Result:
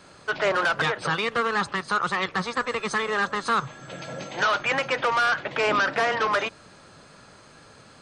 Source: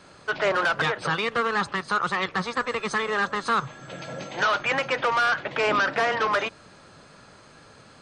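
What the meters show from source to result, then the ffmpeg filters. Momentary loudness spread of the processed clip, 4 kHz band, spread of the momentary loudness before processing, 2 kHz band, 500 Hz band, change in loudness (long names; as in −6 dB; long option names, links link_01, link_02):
8 LU, +0.5 dB, 8 LU, 0.0 dB, 0.0 dB, 0.0 dB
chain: -af "highshelf=frequency=8500:gain=5"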